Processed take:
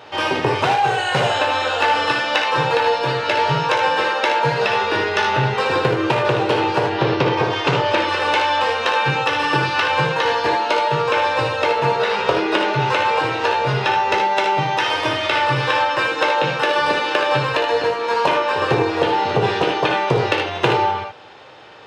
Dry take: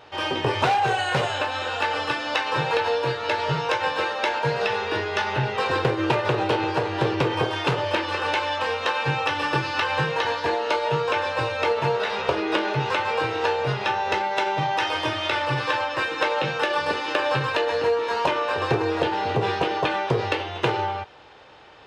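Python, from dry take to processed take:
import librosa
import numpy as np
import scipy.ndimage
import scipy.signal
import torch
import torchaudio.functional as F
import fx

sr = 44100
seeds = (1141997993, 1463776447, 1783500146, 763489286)

y = fx.lowpass(x, sr, hz=fx.line((6.89, 5400.0), (7.96, 8300.0)), slope=24, at=(6.89, 7.96), fade=0.02)
y = fx.rider(y, sr, range_db=10, speed_s=0.5)
y = scipy.signal.sosfilt(scipy.signal.butter(2, 100.0, 'highpass', fs=sr, output='sos'), y)
y = fx.room_early_taps(y, sr, ms=(59, 76), db=(-8.0, -7.0))
y = y * 10.0 ** (4.5 / 20.0)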